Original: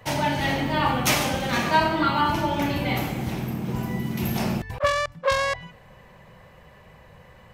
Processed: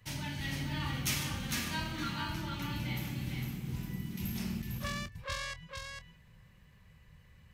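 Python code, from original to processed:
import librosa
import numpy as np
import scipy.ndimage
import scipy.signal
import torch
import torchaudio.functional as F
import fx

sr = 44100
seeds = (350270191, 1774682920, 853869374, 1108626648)

y = fx.tone_stack(x, sr, knobs='6-0-2')
y = fx.doubler(y, sr, ms=26.0, db=-13.5)
y = y + 10.0 ** (-4.5 / 20.0) * np.pad(y, (int(454 * sr / 1000.0), 0))[:len(y)]
y = F.gain(torch.from_numpy(y), 5.0).numpy()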